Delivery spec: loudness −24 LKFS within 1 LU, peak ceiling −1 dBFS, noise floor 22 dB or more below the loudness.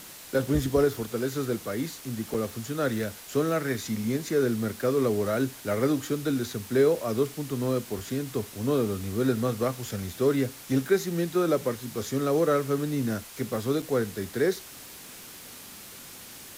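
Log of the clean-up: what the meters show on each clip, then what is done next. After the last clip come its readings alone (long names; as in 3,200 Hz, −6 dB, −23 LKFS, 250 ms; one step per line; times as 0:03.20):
number of dropouts 2; longest dropout 4.7 ms; background noise floor −45 dBFS; target noise floor −50 dBFS; integrated loudness −28.0 LKFS; sample peak −11.5 dBFS; target loudness −24.0 LKFS
→ repair the gap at 0:02.34/0:13.82, 4.7 ms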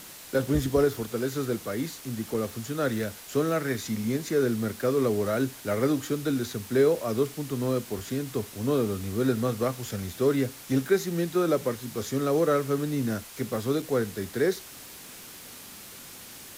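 number of dropouts 0; background noise floor −45 dBFS; target noise floor −50 dBFS
→ broadband denoise 6 dB, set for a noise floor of −45 dBFS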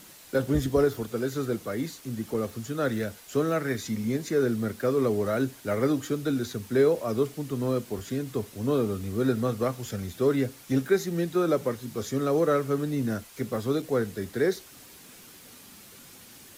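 background noise floor −50 dBFS; integrated loudness −28.0 LKFS; sample peak −12.0 dBFS; target loudness −24.0 LKFS
→ level +4 dB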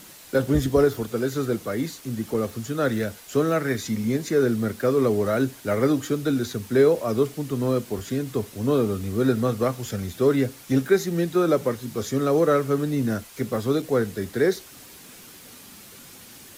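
integrated loudness −24.0 LKFS; sample peak −8.0 dBFS; background noise floor −46 dBFS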